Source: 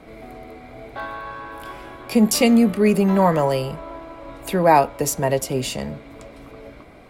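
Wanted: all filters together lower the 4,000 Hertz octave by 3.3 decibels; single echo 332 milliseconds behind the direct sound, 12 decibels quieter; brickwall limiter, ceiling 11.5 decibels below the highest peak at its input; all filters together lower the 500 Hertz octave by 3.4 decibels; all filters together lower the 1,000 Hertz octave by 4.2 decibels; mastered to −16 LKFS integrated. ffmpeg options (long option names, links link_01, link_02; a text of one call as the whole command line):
ffmpeg -i in.wav -af "equalizer=frequency=500:width_type=o:gain=-3,equalizer=frequency=1000:width_type=o:gain=-4,equalizer=frequency=4000:width_type=o:gain=-4.5,alimiter=limit=-18.5dB:level=0:latency=1,aecho=1:1:332:0.251,volume=12.5dB" out.wav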